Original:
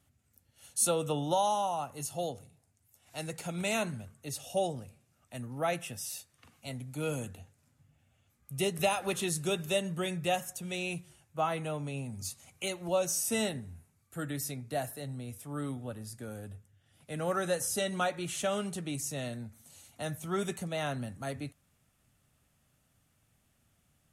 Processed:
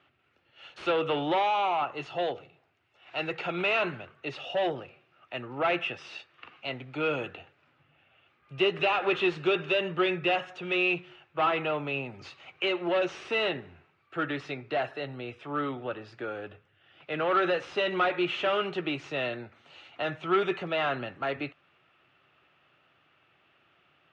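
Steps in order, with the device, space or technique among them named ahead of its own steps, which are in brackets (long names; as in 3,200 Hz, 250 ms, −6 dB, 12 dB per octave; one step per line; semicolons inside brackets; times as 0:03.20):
overdrive pedal into a guitar cabinet (mid-hump overdrive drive 22 dB, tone 3,800 Hz, clips at −15.5 dBFS; loudspeaker in its box 77–3,500 Hz, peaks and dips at 98 Hz −4 dB, 220 Hz −9 dB, 360 Hz +9 dB, 1,300 Hz +5 dB, 2,700 Hz +6 dB)
level −4 dB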